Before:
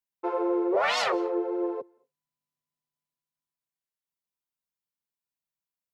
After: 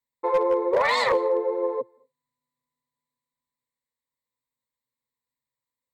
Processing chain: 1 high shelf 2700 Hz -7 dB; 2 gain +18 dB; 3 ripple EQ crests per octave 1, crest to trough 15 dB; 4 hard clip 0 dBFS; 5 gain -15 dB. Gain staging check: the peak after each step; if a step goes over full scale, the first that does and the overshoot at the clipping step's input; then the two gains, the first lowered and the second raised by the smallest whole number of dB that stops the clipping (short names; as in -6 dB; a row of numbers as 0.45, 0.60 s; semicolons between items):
-17.0, +1.0, +5.5, 0.0, -15.0 dBFS; step 2, 5.5 dB; step 2 +12 dB, step 5 -9 dB